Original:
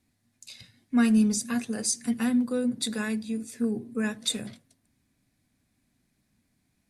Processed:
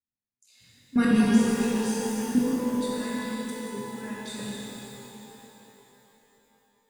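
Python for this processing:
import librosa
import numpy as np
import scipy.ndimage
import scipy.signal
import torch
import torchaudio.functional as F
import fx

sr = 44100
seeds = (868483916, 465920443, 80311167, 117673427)

y = fx.noise_reduce_blind(x, sr, reduce_db=17)
y = fx.level_steps(y, sr, step_db=21)
y = fx.rev_shimmer(y, sr, seeds[0], rt60_s=3.5, semitones=12, shimmer_db=-8, drr_db=-7.0)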